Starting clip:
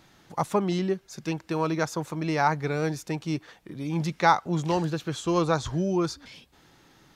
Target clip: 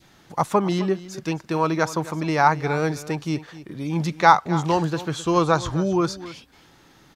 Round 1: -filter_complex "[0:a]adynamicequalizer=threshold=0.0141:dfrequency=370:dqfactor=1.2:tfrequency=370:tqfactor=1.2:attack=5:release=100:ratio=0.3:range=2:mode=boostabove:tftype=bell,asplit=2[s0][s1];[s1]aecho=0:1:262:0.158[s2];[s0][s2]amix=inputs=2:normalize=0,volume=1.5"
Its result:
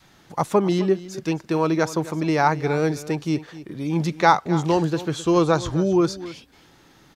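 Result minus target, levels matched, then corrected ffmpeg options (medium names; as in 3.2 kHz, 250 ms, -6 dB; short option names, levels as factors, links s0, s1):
1 kHz band -3.0 dB
-filter_complex "[0:a]adynamicequalizer=threshold=0.0141:dfrequency=1100:dqfactor=1.2:tfrequency=1100:tqfactor=1.2:attack=5:release=100:ratio=0.3:range=2:mode=boostabove:tftype=bell,asplit=2[s0][s1];[s1]aecho=0:1:262:0.158[s2];[s0][s2]amix=inputs=2:normalize=0,volume=1.5"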